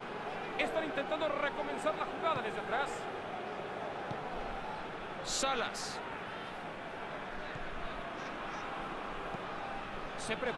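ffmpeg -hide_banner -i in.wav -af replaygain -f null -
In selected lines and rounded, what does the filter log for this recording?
track_gain = +17.2 dB
track_peak = 0.074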